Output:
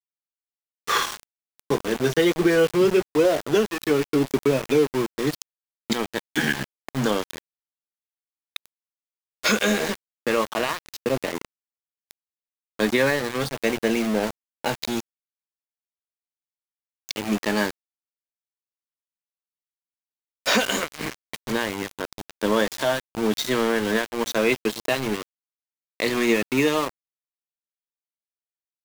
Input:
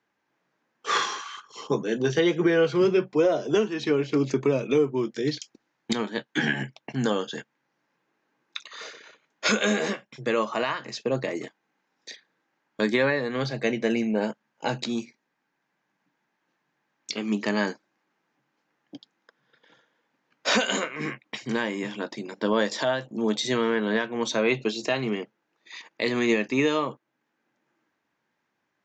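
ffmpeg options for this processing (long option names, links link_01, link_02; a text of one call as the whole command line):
ffmpeg -i in.wav -af "aeval=exprs='val(0)*gte(abs(val(0)),0.0422)':channel_layout=same,volume=2.5dB" out.wav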